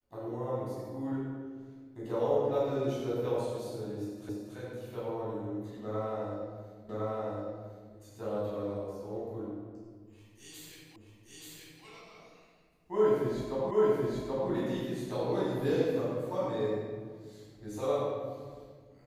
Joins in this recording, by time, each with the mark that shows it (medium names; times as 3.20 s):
4.29 s: repeat of the last 0.28 s
6.89 s: repeat of the last 1.06 s
10.96 s: repeat of the last 0.88 s
13.71 s: repeat of the last 0.78 s